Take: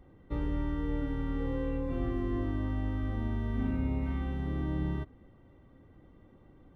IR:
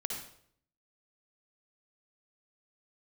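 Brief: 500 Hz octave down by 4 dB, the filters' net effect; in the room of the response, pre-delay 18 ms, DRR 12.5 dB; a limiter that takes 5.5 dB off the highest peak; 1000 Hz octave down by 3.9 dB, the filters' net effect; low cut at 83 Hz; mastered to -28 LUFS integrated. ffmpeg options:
-filter_complex "[0:a]highpass=83,equalizer=f=500:t=o:g=-4.5,equalizer=f=1k:t=o:g=-3.5,alimiter=level_in=4.5dB:limit=-24dB:level=0:latency=1,volume=-4.5dB,asplit=2[a][b];[1:a]atrim=start_sample=2205,adelay=18[c];[b][c]afir=irnorm=-1:irlink=0,volume=-14.5dB[d];[a][d]amix=inputs=2:normalize=0,volume=9.5dB"

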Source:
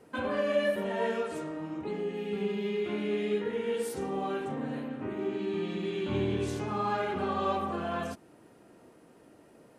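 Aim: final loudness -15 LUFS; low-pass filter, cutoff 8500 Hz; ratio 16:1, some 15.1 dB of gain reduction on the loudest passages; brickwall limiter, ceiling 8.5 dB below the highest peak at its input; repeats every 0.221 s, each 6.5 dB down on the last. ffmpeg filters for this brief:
-af "lowpass=8.5k,acompressor=threshold=-38dB:ratio=16,alimiter=level_in=13dB:limit=-24dB:level=0:latency=1,volume=-13dB,aecho=1:1:221|442|663|884|1105|1326:0.473|0.222|0.105|0.0491|0.0231|0.0109,volume=29dB"

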